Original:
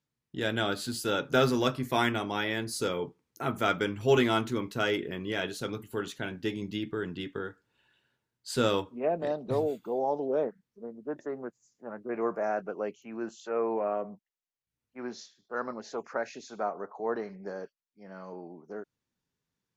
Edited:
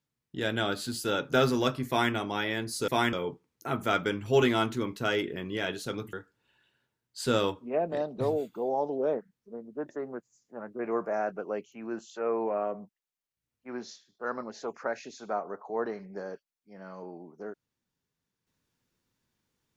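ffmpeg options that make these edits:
ffmpeg -i in.wav -filter_complex "[0:a]asplit=4[link_01][link_02][link_03][link_04];[link_01]atrim=end=2.882[link_05];[link_02]atrim=start=1.878:end=2.132[link_06];[link_03]atrim=start=2.878:end=5.882[link_07];[link_04]atrim=start=7.428[link_08];[link_05][link_06]acrossfade=duration=0.004:curve1=hsin:curve2=hsin[link_09];[link_09][link_07]acrossfade=duration=0.004:curve1=hsin:curve2=hsin[link_10];[link_10][link_08]acrossfade=duration=0.004:curve1=hsin:curve2=hsin" out.wav

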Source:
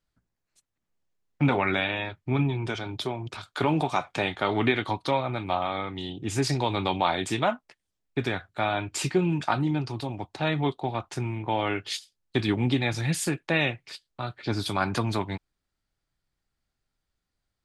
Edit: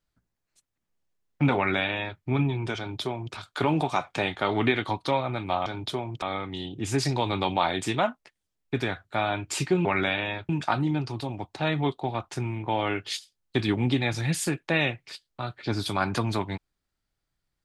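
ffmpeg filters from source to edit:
ffmpeg -i in.wav -filter_complex "[0:a]asplit=5[link_01][link_02][link_03][link_04][link_05];[link_01]atrim=end=5.662[link_06];[link_02]atrim=start=2.778:end=3.342[link_07];[link_03]atrim=start=5.658:end=9.292[link_08];[link_04]atrim=start=1.558:end=2.202[link_09];[link_05]atrim=start=9.288[link_10];[link_06][link_07]acrossfade=duration=0.004:curve1=hsin:curve2=hsin[link_11];[link_11][link_08]acrossfade=duration=0.004:curve1=hsin:curve2=hsin[link_12];[link_12][link_09]acrossfade=duration=0.004:curve1=hsin:curve2=hsin[link_13];[link_13][link_10]acrossfade=duration=0.004:curve1=hsin:curve2=hsin" out.wav

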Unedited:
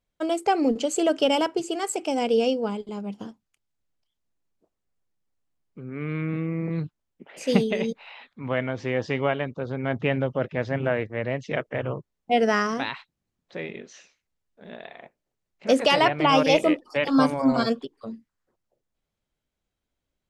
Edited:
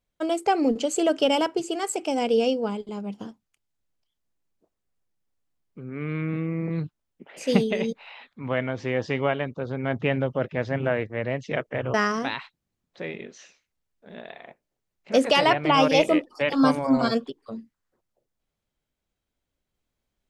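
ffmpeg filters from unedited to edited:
ffmpeg -i in.wav -filter_complex "[0:a]asplit=2[link_01][link_02];[link_01]atrim=end=11.942[link_03];[link_02]atrim=start=12.488[link_04];[link_03][link_04]acrossfade=duration=0.004:curve1=hsin:curve2=hsin" out.wav

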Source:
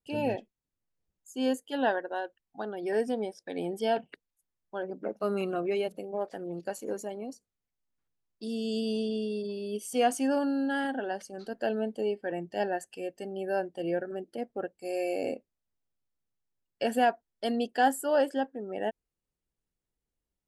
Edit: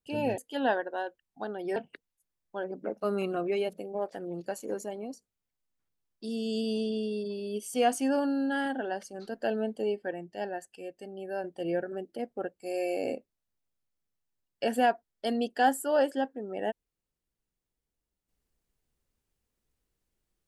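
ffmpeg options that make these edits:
ffmpeg -i in.wav -filter_complex "[0:a]asplit=5[link_01][link_02][link_03][link_04][link_05];[link_01]atrim=end=0.382[link_06];[link_02]atrim=start=1.558:end=2.942[link_07];[link_03]atrim=start=3.948:end=12.302[link_08];[link_04]atrim=start=12.298:end=13.632,asetpts=PTS-STARTPTS,volume=-5dB[link_09];[link_05]atrim=start=13.628[link_10];[link_06][link_07]acrossfade=duration=0.004:curve1=hsin:curve2=hsin[link_11];[link_11][link_08]acrossfade=duration=0.004:curve1=hsin:curve2=hsin[link_12];[link_12][link_09]acrossfade=duration=0.004:curve1=hsin:curve2=hsin[link_13];[link_13][link_10]acrossfade=duration=0.004:curve1=hsin:curve2=hsin" out.wav

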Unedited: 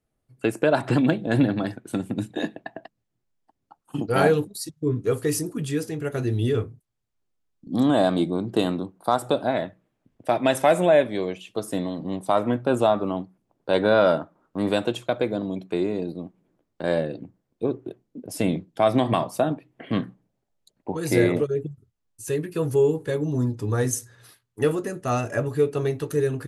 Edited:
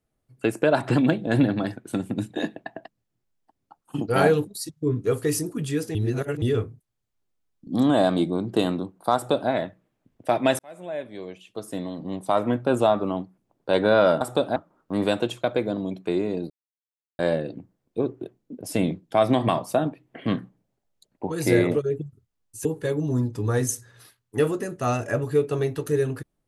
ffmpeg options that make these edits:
ffmpeg -i in.wav -filter_complex "[0:a]asplit=9[link_01][link_02][link_03][link_04][link_05][link_06][link_07][link_08][link_09];[link_01]atrim=end=5.952[link_10];[link_02]atrim=start=5.948:end=6.422,asetpts=PTS-STARTPTS,areverse[link_11];[link_03]atrim=start=6.418:end=10.59,asetpts=PTS-STARTPTS,afade=type=out:start_time=4.168:duration=0.004:curve=hsin[link_12];[link_04]atrim=start=10.59:end=14.212,asetpts=PTS-STARTPTS,afade=type=in:duration=1.94[link_13];[link_05]atrim=start=9.148:end=9.502[link_14];[link_06]atrim=start=14.208:end=16.15,asetpts=PTS-STARTPTS,afade=type=out:start_time=1.938:duration=0.004:curve=hsin[link_15];[link_07]atrim=start=16.15:end=16.84,asetpts=PTS-STARTPTS,volume=0[link_16];[link_08]atrim=start=16.84:end=22.302,asetpts=PTS-STARTPTS,afade=type=in:duration=0.004:curve=hsin[link_17];[link_09]atrim=start=22.888[link_18];[link_10][link_11]acrossfade=duration=0.004:curve1=hsin:curve2=hsin[link_19];[link_12][link_13]concat=n=2:v=0:a=1[link_20];[link_19][link_20]acrossfade=duration=0.004:curve1=hsin:curve2=hsin[link_21];[link_21][link_14]acrossfade=duration=0.004:curve1=hsin:curve2=hsin[link_22];[link_15][link_16][link_17]concat=n=3:v=0:a=1[link_23];[link_22][link_23]acrossfade=duration=0.004:curve1=hsin:curve2=hsin[link_24];[link_24][link_18]acrossfade=duration=0.004:curve1=hsin:curve2=hsin" out.wav

